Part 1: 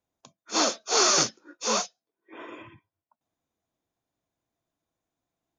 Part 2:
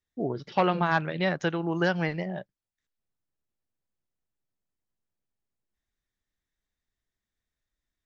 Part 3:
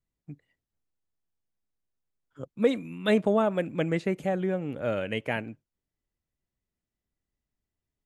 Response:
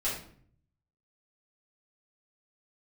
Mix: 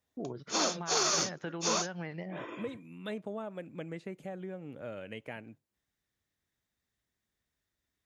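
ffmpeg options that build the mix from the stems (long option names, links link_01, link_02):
-filter_complex "[0:a]acontrast=34,volume=-7dB[link_01];[1:a]acrossover=split=3600[link_02][link_03];[link_03]acompressor=threshold=-56dB:ratio=4:attack=1:release=60[link_04];[link_02][link_04]amix=inputs=2:normalize=0,alimiter=limit=-18dB:level=0:latency=1:release=96,volume=2.5dB[link_05];[2:a]volume=-3.5dB[link_06];[link_05][link_06]amix=inputs=2:normalize=0,highpass=69,acompressor=threshold=-46dB:ratio=2,volume=0dB[link_07];[link_01][link_07]amix=inputs=2:normalize=0,alimiter=limit=-19.5dB:level=0:latency=1:release=108"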